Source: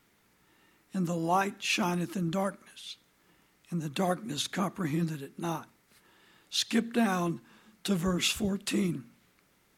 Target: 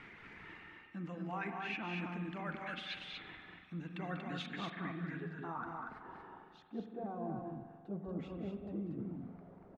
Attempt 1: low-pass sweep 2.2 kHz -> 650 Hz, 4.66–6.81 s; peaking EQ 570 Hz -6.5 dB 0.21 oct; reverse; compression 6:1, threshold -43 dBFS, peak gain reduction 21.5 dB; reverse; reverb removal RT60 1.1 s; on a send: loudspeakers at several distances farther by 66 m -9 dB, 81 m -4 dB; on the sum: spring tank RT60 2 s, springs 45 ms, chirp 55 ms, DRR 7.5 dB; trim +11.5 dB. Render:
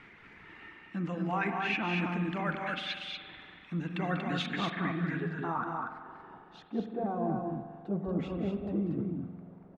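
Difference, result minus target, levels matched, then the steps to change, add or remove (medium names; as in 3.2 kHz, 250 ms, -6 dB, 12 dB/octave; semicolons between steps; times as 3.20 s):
compression: peak gain reduction -9 dB
change: compression 6:1, threshold -54 dBFS, peak gain reduction 30.5 dB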